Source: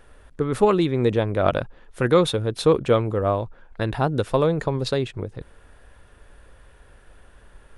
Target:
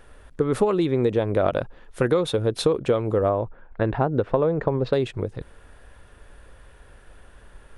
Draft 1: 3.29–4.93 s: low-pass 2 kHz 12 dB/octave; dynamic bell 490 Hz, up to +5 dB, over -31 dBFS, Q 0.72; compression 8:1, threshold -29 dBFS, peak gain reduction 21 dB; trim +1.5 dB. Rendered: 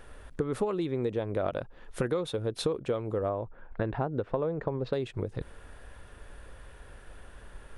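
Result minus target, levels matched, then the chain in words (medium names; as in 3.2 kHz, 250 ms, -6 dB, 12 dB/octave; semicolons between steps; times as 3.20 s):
compression: peak gain reduction +9 dB
3.29–4.93 s: low-pass 2 kHz 12 dB/octave; dynamic bell 490 Hz, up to +5 dB, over -31 dBFS, Q 0.72; compression 8:1, threshold -18.5 dBFS, peak gain reduction 11.5 dB; trim +1.5 dB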